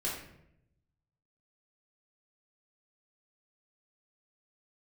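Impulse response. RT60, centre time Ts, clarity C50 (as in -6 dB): 0.75 s, 44 ms, 3.0 dB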